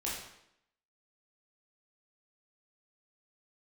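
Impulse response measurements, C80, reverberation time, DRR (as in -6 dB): 5.0 dB, 0.75 s, -6.0 dB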